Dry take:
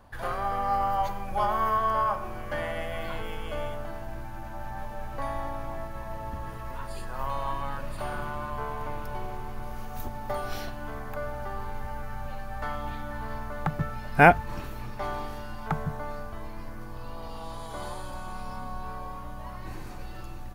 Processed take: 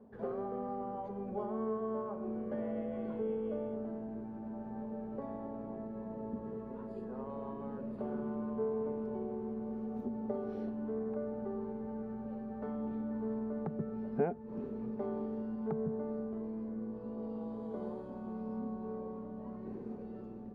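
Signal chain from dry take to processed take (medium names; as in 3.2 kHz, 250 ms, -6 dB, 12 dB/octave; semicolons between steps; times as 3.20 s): peaking EQ 310 Hz +10.5 dB 0.87 oct; compression 3:1, threshold -28 dBFS, peak gain reduction 14.5 dB; two resonant band-passes 310 Hz, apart 0.9 oct; trim +5.5 dB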